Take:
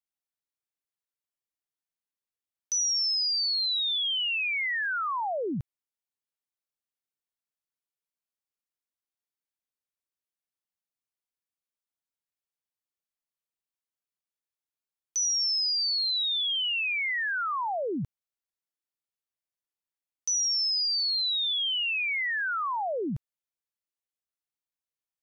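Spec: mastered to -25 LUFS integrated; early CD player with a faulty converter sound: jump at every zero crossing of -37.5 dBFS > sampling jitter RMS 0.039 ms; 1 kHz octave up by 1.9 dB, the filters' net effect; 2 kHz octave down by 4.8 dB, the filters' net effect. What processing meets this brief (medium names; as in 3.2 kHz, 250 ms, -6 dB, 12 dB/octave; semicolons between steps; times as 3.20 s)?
peaking EQ 1 kHz +4.5 dB; peaking EQ 2 kHz -7.5 dB; jump at every zero crossing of -37.5 dBFS; sampling jitter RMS 0.039 ms; trim +1.5 dB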